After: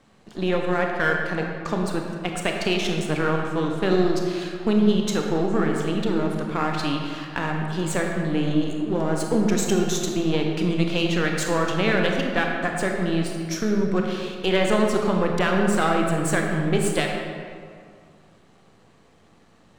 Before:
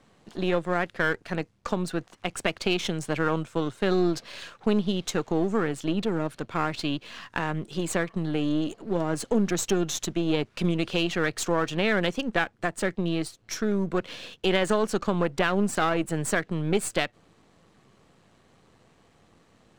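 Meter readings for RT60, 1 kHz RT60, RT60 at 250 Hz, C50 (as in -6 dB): 2.2 s, 2.2 s, 2.2 s, 2.0 dB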